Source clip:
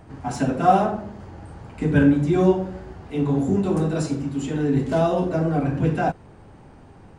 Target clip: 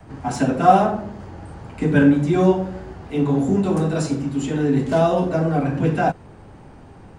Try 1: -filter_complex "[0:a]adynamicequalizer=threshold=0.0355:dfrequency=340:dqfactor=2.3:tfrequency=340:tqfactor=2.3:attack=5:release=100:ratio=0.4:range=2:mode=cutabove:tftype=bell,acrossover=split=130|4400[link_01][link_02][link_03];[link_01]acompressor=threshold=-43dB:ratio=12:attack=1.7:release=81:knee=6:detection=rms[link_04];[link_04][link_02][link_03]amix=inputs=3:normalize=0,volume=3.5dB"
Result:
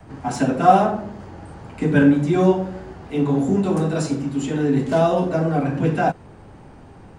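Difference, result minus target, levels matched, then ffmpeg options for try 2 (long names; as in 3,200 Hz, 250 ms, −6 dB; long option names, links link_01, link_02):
downward compressor: peak gain reduction +6 dB
-filter_complex "[0:a]adynamicequalizer=threshold=0.0355:dfrequency=340:dqfactor=2.3:tfrequency=340:tqfactor=2.3:attack=5:release=100:ratio=0.4:range=2:mode=cutabove:tftype=bell,acrossover=split=130|4400[link_01][link_02][link_03];[link_01]acompressor=threshold=-36.5dB:ratio=12:attack=1.7:release=81:knee=6:detection=rms[link_04];[link_04][link_02][link_03]amix=inputs=3:normalize=0,volume=3.5dB"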